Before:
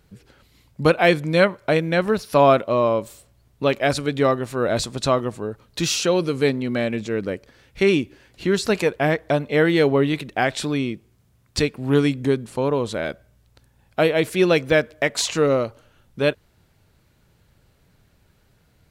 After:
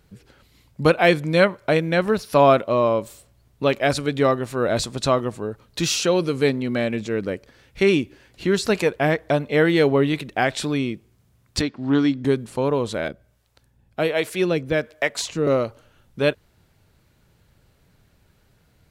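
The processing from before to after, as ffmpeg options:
-filter_complex "[0:a]asettb=1/sr,asplit=3[a][b][c];[a]atrim=end=11.614[d];[b]atrim=start=11.61:end=12.25,asetpts=PTS-STARTPTS,afade=t=in:d=0.004:c=qsin,afade=t=out:st=0.636:d=0.004:c=qsin,highpass=100,equalizer=f=160:t=q:w=4:g=-9,equalizer=f=270:t=q:w=4:g=4,equalizer=f=460:t=q:w=4:g=-10,equalizer=f=2.5k:t=q:w=4:g=-8,lowpass=f=5.6k:w=0.5412,lowpass=f=5.6k:w=1.3066[e];[c]atrim=start=12.246[f];[d][e]acrossfade=d=0.004:c1=hsin:c2=qsin[g];[g][f]acrossfade=d=0.004:c1=qsin:c2=hsin,asettb=1/sr,asplit=3[h][i][j];[h]atrim=end=13.084[k];[i]atrim=start=13.08:end=15.47,asetpts=PTS-STARTPTS,afade=t=in:d=0.004:c=qsin,afade=t=out:st=2.386:d=0.004:c=qsin,acrossover=split=420[l][m];[l]aeval=exprs='val(0)*(1-0.7/2+0.7/2*cos(2*PI*1.3*n/s))':c=same[n];[m]aeval=exprs='val(0)*(1-0.7/2-0.7/2*cos(2*PI*1.3*n/s))':c=same[o];[n][o]amix=inputs=2:normalize=0[p];[j]atrim=start=15.466[q];[k][p]acrossfade=d=0.004:c1=hsin:c2=qsin[r];[r][q]acrossfade=d=0.004:c1=qsin:c2=hsin"

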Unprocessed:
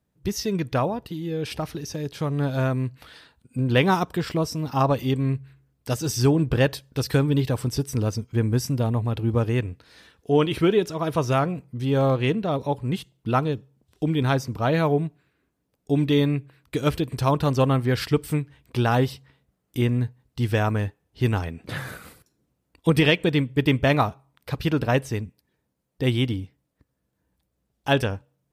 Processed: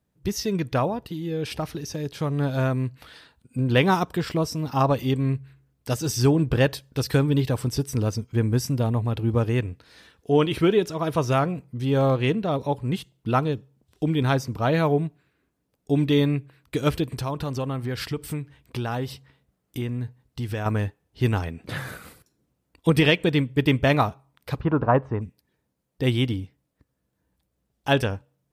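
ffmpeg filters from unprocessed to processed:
-filter_complex "[0:a]asettb=1/sr,asplit=3[a][b][c];[a]atrim=end=17.074[d];[b]atrim=start=17.07:end=20.66,asetpts=PTS-STARTPTS,afade=t=in:d=0.004:c=qsin,afade=t=out:st=3.586:d=0.004:c=qsin,acompressor=threshold=-27dB:ratio=2.5:attack=3.2:release=140:knee=1:detection=peak[e];[c]atrim=start=20.656[f];[d][e]acrossfade=d=0.004:c1=hsin:c2=qsin[g];[g][f]acrossfade=d=0.004:c1=qsin:c2=hsin,asplit=3[h][i][j];[h]afade=t=out:st=24.59:d=0.02[k];[i]lowpass=f=1.1k:t=q:w=2.8,afade=t=in:st=24.59:d=0.02,afade=t=out:st=25.2:d=0.02[l];[j]afade=t=in:st=25.2:d=0.02[m];[k][l][m]amix=inputs=3:normalize=0"

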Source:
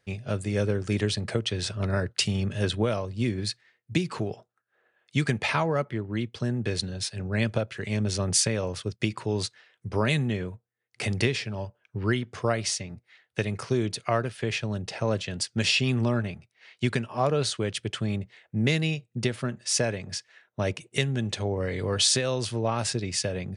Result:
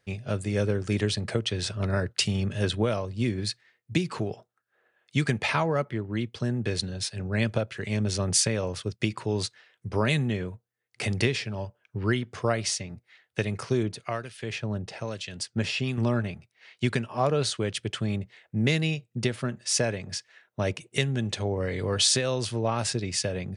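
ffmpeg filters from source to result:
-filter_complex "[0:a]asettb=1/sr,asplit=3[a][b][c];[a]atrim=end=13.834[d];[b]atrim=start=13.83:end=15.98,asetpts=PTS-STARTPTS,afade=t=in:d=0.004:c=qsin,afade=t=out:st=2.146:d=0.004:c=qsin,acrossover=split=1900[e][f];[e]aeval=exprs='val(0)*(1-0.7/2+0.7/2*cos(2*PI*1.1*n/s))':c=same[g];[f]aeval=exprs='val(0)*(1-0.7/2-0.7/2*cos(2*PI*1.1*n/s))':c=same[h];[g][h]amix=inputs=2:normalize=0[i];[c]atrim=start=15.976[j];[d][i]acrossfade=d=0.004:c1=hsin:c2=qsin[k];[k][j]acrossfade=d=0.004:c1=qsin:c2=hsin"

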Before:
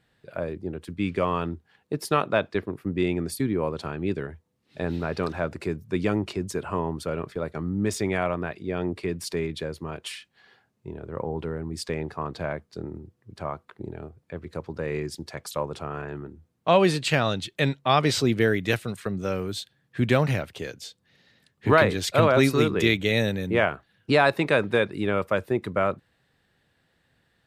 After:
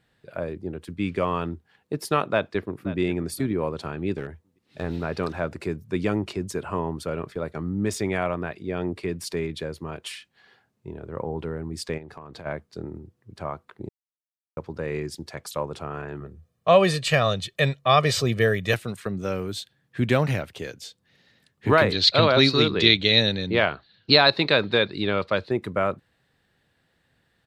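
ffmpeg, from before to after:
-filter_complex "[0:a]asplit=2[a][b];[b]afade=t=in:st=2.25:d=0.01,afade=t=out:st=2.99:d=0.01,aecho=0:1:530|1060|1590:0.16788|0.0419701|0.0104925[c];[a][c]amix=inputs=2:normalize=0,asettb=1/sr,asplit=3[d][e][f];[d]atrim=end=4.164[g];[e]atrim=start=4.16:end=4.98,asetpts=PTS-STARTPTS,afade=t=in:d=0.004:c=qsin,afade=t=out:st=0.816:d=0.004:c=qsin,aeval=exprs='clip(val(0),-1,0.0355)':c=same[h];[f]atrim=start=4.976[i];[g][h]acrossfade=d=0.004:c1=hsin:c2=qsin[j];[j][i]acrossfade=d=0.004:c1=qsin:c2=hsin,asplit=3[k][l][m];[k]afade=t=out:st=11.97:d=0.02[n];[l]acompressor=threshold=-36dB:ratio=12:attack=3.2:release=140:knee=1:detection=peak,afade=t=in:st=11.97:d=0.02,afade=t=out:st=12.45:d=0.02[o];[m]afade=t=in:st=12.45:d=0.02[p];[n][o][p]amix=inputs=3:normalize=0,asettb=1/sr,asplit=3[q][r][s];[q]atrim=end=16.204[t];[r]atrim=start=16.2:end=18.74,asetpts=PTS-STARTPTS,afade=t=in:d=0.004:c=qsin,afade=t=out:st=2.536:d=0.004:c=qsin,aecho=1:1:1.7:0.65,atrim=end_sample=112014[u];[s]atrim=start=18.736[v];[t][u]acrossfade=d=0.004:c1=hsin:c2=qsin[w];[w][v]acrossfade=d=0.004:c1=qsin:c2=hsin,asettb=1/sr,asplit=3[x][y][z];[x]atrim=end=21.924[aa];[y]atrim=start=21.92:end=25.51,asetpts=PTS-STARTPTS,afade=t=in:d=0.004:c=qsin,afade=t=out:st=3.586:d=0.004:c=qsin,lowpass=f=4.2k:t=q:w=9.7[ab];[z]atrim=start=25.506[ac];[aa][ab]acrossfade=d=0.004:c1=hsin:c2=qsin[ad];[ad][ac]acrossfade=d=0.004:c1=qsin:c2=hsin,asplit=3[ae][af][ag];[ae]atrim=end=13.89,asetpts=PTS-STARTPTS,afade=t=out:st=13.886:d=0.004:c=hsin[ah];[af]atrim=start=13.89:end=14.57,asetpts=PTS-STARTPTS,volume=0[ai];[ag]atrim=start=14.57,asetpts=PTS-STARTPTS,afade=t=in:d=0.004:c=hsin[aj];[ah][ai][aj]concat=n=3:v=0:a=1"

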